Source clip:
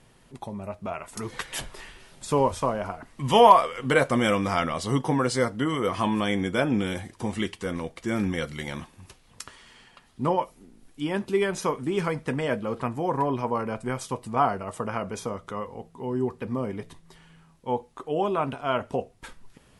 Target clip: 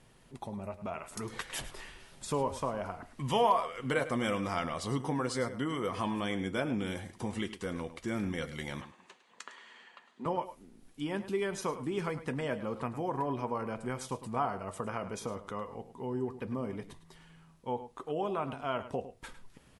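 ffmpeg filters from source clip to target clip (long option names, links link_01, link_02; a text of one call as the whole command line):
ffmpeg -i in.wav -filter_complex "[0:a]acompressor=threshold=-33dB:ratio=1.5,asettb=1/sr,asplit=3[link_01][link_02][link_03];[link_01]atrim=end=8.814[link_04];[link_02]atrim=start=8.81:end=10.26,asetpts=PTS-STARTPTS,afade=type=in:duration=0.004:curve=qsin,afade=type=out:start_time=1.446:duration=0.004:curve=qsin,highpass=frequency=240:width=0.5412,highpass=frequency=240:width=1.3066,equalizer=frequency=290:width_type=q:width=4:gain=-6,equalizer=frequency=1000:width_type=q:width=4:gain=4,equalizer=frequency=1800:width_type=q:width=4:gain=5,equalizer=frequency=5300:width_type=q:width=4:gain=-10,lowpass=frequency=7000:width=0.5412,lowpass=frequency=7000:width=1.3066[link_05];[link_03]atrim=start=10.256[link_06];[link_04][link_05]acrossfade=duration=0.004:curve1=hsin:curve2=qsin[link_07];[link_07][link_06]acrossfade=duration=0.004:curve1=qsin:curve2=hsin,asplit=2[link_08][link_09];[link_09]adelay=105,volume=-13dB,highshelf=frequency=4000:gain=-2.36[link_10];[link_08][link_10]amix=inputs=2:normalize=0,volume=-4dB" out.wav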